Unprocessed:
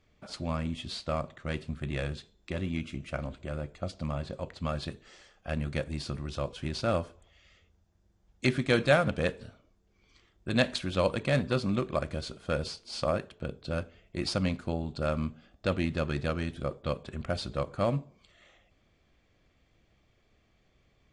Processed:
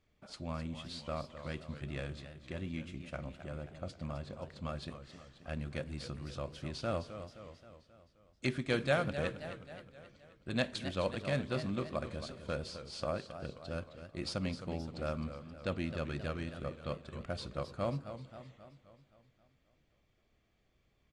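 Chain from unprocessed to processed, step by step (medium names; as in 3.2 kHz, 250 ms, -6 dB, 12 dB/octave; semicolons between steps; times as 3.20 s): feedback delay 223 ms, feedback 48%, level -24 dB; modulated delay 264 ms, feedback 54%, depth 136 cents, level -11 dB; trim -7.5 dB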